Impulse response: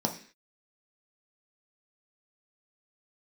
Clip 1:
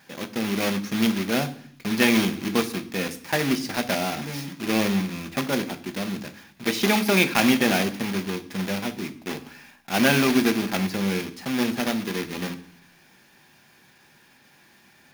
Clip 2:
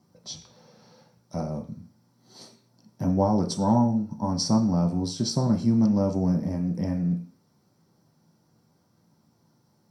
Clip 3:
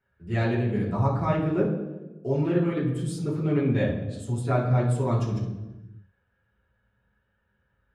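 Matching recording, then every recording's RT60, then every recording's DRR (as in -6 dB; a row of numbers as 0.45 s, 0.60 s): 2; 0.65 s, 0.45 s, 1.1 s; 8.0 dB, 1.5 dB, -8.0 dB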